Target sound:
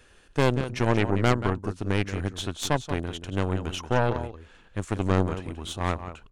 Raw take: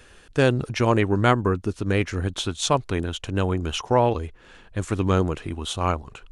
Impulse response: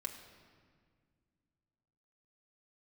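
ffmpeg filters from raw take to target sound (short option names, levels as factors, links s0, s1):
-filter_complex "[0:a]asplit=2[s0][s1];[s1]adelay=180.8,volume=0.316,highshelf=f=4000:g=-4.07[s2];[s0][s2]amix=inputs=2:normalize=0,aeval=exprs='0.596*(cos(1*acos(clip(val(0)/0.596,-1,1)))-cos(1*PI/2))+0.168*(cos(4*acos(clip(val(0)/0.596,-1,1)))-cos(4*PI/2))':c=same,volume=0.501"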